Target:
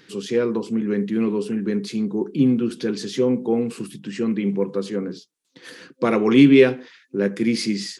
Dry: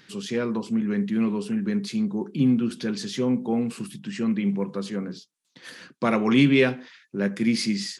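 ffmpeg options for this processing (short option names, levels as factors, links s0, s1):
-af "superequalizer=6b=2:7b=2.24,volume=1.12"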